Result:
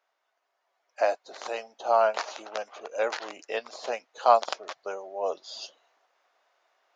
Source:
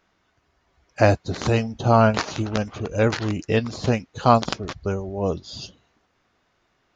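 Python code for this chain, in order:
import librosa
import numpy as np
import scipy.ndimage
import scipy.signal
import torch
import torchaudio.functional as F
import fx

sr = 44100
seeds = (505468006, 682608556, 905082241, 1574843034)

y = fx.rider(x, sr, range_db=10, speed_s=2.0)
y = fx.ladder_highpass(y, sr, hz=520.0, resonance_pct=40)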